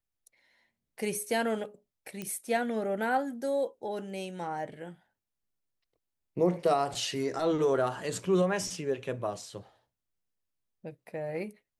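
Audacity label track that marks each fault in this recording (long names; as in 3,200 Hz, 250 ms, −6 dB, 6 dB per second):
2.220000	2.220000	click −22 dBFS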